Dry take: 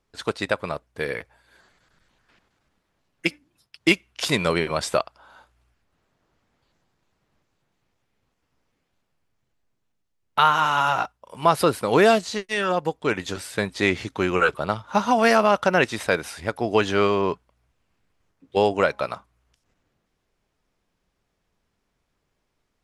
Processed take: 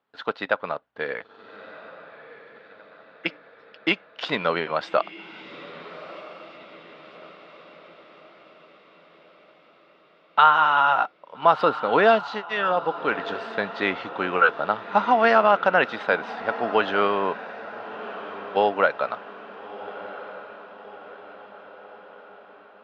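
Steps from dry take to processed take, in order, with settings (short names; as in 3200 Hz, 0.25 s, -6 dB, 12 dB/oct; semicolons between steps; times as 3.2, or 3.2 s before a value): speaker cabinet 270–3500 Hz, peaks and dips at 360 Hz -7 dB, 800 Hz +3 dB, 1400 Hz +4 dB, 2300 Hz -5 dB; diffused feedback echo 1.312 s, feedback 54%, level -14.5 dB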